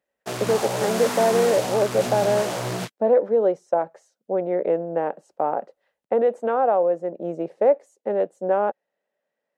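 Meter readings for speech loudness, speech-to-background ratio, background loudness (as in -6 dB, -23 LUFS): -23.0 LUFS, 4.5 dB, -27.5 LUFS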